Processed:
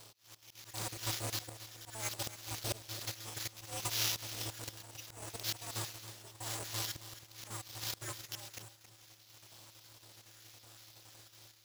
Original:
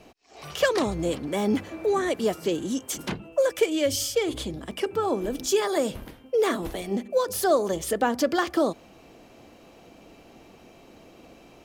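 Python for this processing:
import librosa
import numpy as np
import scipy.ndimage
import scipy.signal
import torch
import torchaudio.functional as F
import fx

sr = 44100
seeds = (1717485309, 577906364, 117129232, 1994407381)

y = fx.spec_dropout(x, sr, seeds[0], share_pct=48)
y = fx.sample_hold(y, sr, seeds[1], rate_hz=8600.0, jitter_pct=0)
y = np.abs(y)
y = fx.hpss(y, sr, part='percussive', gain_db=-15)
y = fx.rider(y, sr, range_db=4, speed_s=0.5)
y = fx.bass_treble(y, sr, bass_db=-11, treble_db=15)
y = fx.auto_swell(y, sr, attack_ms=622.0)
y = fx.peak_eq(y, sr, hz=3900.0, db=6.5, octaves=2.0)
y = fx.echo_feedback(y, sr, ms=272, feedback_pct=33, wet_db=-13)
y = y * np.sign(np.sin(2.0 * np.pi * 110.0 * np.arange(len(y)) / sr))
y = F.gain(torch.from_numpy(y), 2.0).numpy()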